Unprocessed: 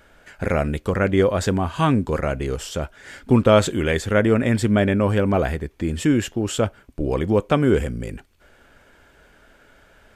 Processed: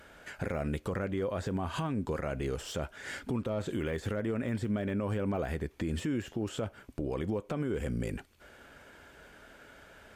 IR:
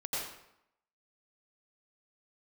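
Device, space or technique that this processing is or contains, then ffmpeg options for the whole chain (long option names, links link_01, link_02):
podcast mastering chain: -af "highpass=frequency=71:poles=1,deesser=0.9,acompressor=threshold=-24dB:ratio=3,alimiter=limit=-24dB:level=0:latency=1:release=149" -ar 48000 -c:a libmp3lame -b:a 112k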